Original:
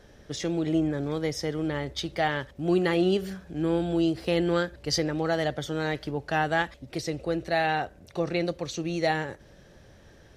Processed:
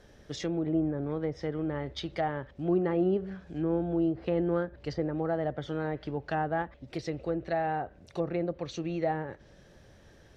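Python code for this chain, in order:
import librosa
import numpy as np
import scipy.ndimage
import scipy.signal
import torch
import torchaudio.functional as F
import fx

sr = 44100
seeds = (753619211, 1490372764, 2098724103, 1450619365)

y = fx.env_lowpass_down(x, sr, base_hz=1100.0, full_db=-23.5)
y = y * librosa.db_to_amplitude(-3.0)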